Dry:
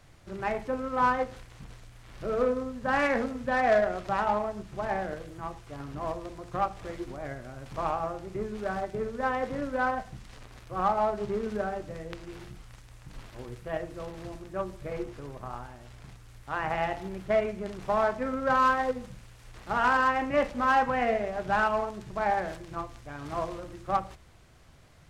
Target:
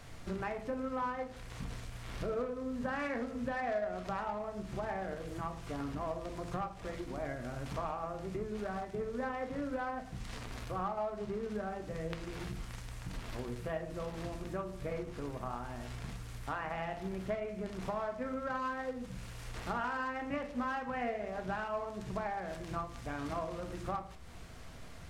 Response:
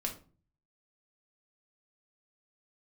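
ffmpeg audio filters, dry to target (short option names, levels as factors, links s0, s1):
-filter_complex "[0:a]acompressor=threshold=0.00794:ratio=5,asplit=2[s0][s1];[1:a]atrim=start_sample=2205[s2];[s1][s2]afir=irnorm=-1:irlink=0,volume=0.944[s3];[s0][s3]amix=inputs=2:normalize=0"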